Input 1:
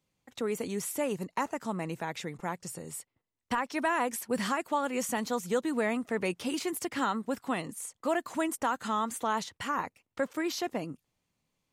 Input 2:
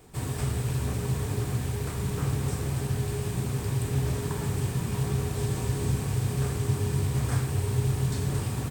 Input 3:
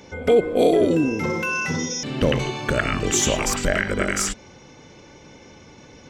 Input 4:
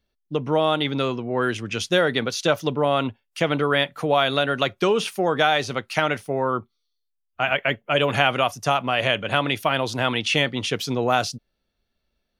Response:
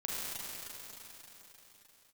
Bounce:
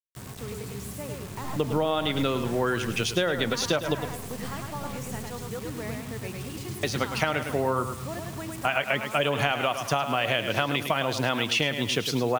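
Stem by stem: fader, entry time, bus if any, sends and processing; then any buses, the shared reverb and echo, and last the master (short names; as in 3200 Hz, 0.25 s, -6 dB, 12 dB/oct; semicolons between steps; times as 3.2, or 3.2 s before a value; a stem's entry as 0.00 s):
-8.5 dB, 0.00 s, no send, echo send -3.5 dB, dry
-12.5 dB, 0.00 s, no send, no echo send, small resonant body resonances 200/1100 Hz, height 11 dB, ringing for 90 ms
-19.0 dB, 1.15 s, no send, no echo send, chord vocoder bare fifth, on F3; full-wave rectifier
+0.5 dB, 1.25 s, muted 3.95–6.83, no send, echo send -11 dB, dry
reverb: off
echo: feedback echo 0.106 s, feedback 30%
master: bit-crush 7-bit; compressor 6:1, threshold -21 dBFS, peak gain reduction 8.5 dB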